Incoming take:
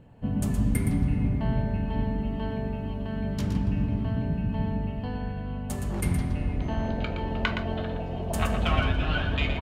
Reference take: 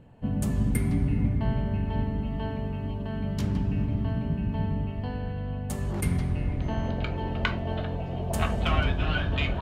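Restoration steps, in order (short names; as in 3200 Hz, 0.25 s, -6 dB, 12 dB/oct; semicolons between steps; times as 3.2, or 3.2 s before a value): inverse comb 0.118 s -7.5 dB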